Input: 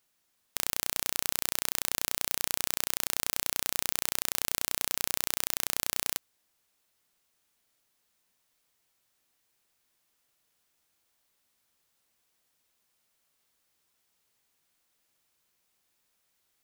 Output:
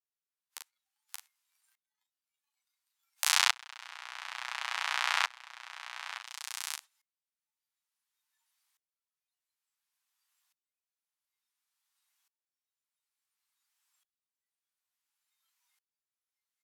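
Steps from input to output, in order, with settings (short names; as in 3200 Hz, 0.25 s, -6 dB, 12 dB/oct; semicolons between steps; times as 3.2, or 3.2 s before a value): 0.59–3.22 self-modulated delay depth 0.43 ms; echo 0.577 s -12 dB; flange 1.1 Hz, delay 5.8 ms, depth 9.4 ms, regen -4%; treble ducked by the level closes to 2500 Hz, closed at -39.5 dBFS; steep high-pass 830 Hz 36 dB/oct; doubler 40 ms -8 dB; spectral noise reduction 16 dB; maximiser +17.5 dB; dB-ramp tremolo swelling 0.57 Hz, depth 26 dB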